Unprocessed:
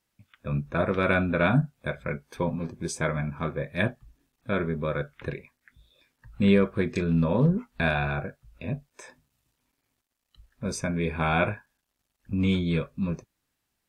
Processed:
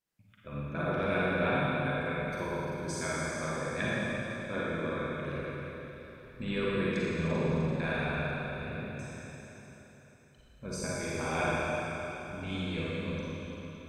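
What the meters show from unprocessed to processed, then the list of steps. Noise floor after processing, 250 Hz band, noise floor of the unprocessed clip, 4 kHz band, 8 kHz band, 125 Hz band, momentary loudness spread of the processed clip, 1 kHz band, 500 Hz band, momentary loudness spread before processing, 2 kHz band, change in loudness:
-59 dBFS, -7.5 dB, -80 dBFS, -2.0 dB, -0.5 dB, -7.5 dB, 14 LU, -3.5 dB, -4.0 dB, 13 LU, -3.0 dB, -6.0 dB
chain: harmonic-percussive split harmonic -11 dB; Schroeder reverb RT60 3.8 s, DRR -8 dB; trim -8.5 dB

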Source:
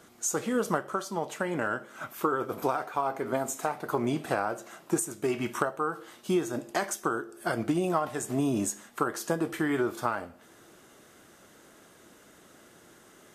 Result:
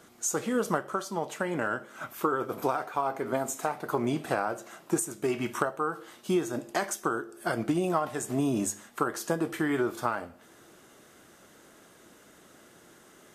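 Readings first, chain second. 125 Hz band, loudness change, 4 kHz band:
0.0 dB, 0.0 dB, 0.0 dB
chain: hum notches 50/100 Hz

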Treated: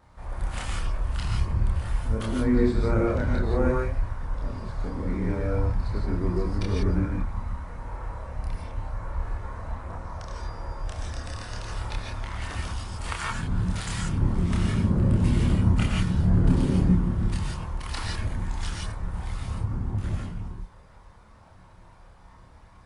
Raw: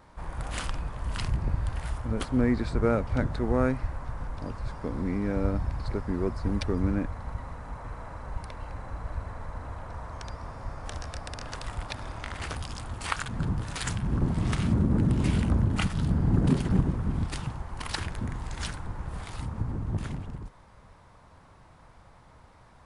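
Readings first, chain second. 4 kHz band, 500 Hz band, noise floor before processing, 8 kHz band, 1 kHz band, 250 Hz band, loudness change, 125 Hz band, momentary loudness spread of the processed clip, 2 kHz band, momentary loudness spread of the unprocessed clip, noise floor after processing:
+1.0 dB, +2.0 dB, -55 dBFS, +1.0 dB, +1.0 dB, +1.5 dB, +2.5 dB, +3.0 dB, 14 LU, +1.0 dB, 15 LU, -51 dBFS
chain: gated-style reverb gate 190 ms rising, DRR -1.5 dB; chorus voices 4, 0.39 Hz, delay 28 ms, depth 1.2 ms

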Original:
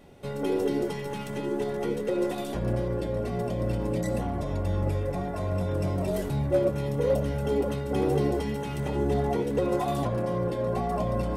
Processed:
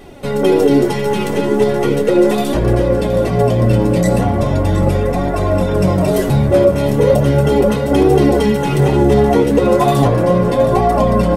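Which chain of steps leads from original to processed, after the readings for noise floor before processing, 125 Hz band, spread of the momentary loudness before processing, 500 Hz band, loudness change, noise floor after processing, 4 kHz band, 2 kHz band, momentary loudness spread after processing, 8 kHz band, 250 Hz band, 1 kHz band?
-34 dBFS, +14.0 dB, 5 LU, +15.0 dB, +15.0 dB, -18 dBFS, +15.5 dB, +15.5 dB, 4 LU, +15.0 dB, +15.5 dB, +15.5 dB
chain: flange 0.37 Hz, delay 2.4 ms, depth 8.7 ms, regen +36%; delay 721 ms -11.5 dB; loudness maximiser +20 dB; trim -1 dB

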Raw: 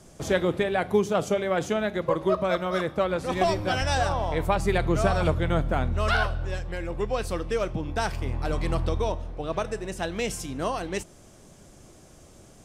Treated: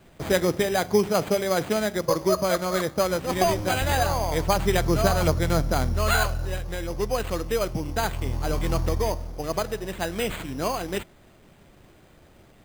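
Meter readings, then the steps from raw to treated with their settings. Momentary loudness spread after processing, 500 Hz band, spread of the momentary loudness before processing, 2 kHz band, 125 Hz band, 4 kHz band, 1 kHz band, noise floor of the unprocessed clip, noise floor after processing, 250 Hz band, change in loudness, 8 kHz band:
8 LU, +1.5 dB, 8 LU, +1.0 dB, +1.5 dB, +4.0 dB, +1.5 dB, -51 dBFS, -54 dBFS, +1.5 dB, +2.0 dB, +7.0 dB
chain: in parallel at -3.5 dB: crossover distortion -43 dBFS; on the sum: careless resampling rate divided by 8×, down none, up hold; trim -2.5 dB

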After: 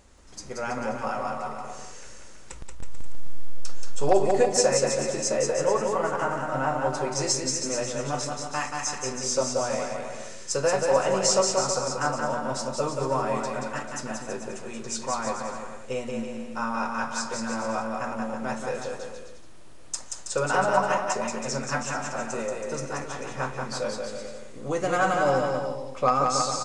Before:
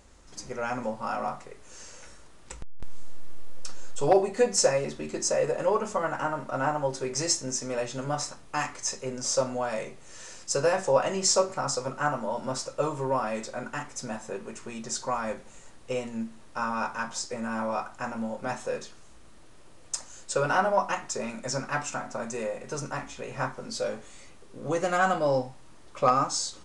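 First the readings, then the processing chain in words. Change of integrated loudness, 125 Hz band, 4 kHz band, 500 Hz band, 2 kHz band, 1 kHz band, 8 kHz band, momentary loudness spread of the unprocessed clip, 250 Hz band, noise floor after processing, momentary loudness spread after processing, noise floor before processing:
+2.0 dB, +2.5 dB, +2.0 dB, +2.5 dB, +2.0 dB, +2.5 dB, +2.0 dB, 17 LU, +2.0 dB, -40 dBFS, 16 LU, -48 dBFS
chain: bouncing-ball echo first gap 180 ms, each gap 0.8×, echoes 5

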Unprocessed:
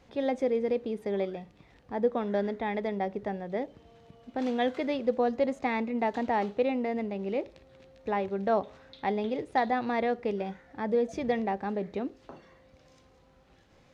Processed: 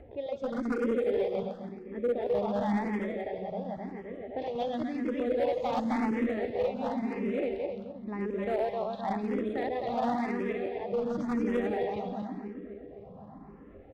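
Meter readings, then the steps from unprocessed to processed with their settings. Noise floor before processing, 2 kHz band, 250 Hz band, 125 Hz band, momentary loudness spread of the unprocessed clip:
-61 dBFS, -3.5 dB, +0.5 dB, +1.0 dB, 8 LU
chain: backward echo that repeats 130 ms, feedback 73%, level 0 dB; band-stop 1.5 kHz, Q 5.7; level-controlled noise filter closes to 1 kHz, open at -24.5 dBFS; treble shelf 5.7 kHz -10.5 dB; upward compressor, threshold -34 dBFS; rotary cabinet horn 0.65 Hz; overload inside the chain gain 21.5 dB; speakerphone echo 170 ms, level -13 dB; barber-pole phaser +0.94 Hz

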